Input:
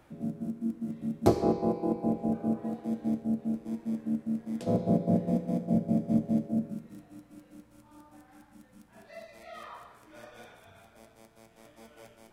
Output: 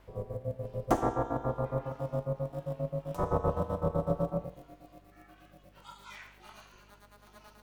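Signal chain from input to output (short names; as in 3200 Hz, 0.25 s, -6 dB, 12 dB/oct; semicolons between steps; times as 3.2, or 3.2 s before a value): speed glide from 136% -> 187%; ring modulator 200 Hz; hum 50 Hz, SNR 28 dB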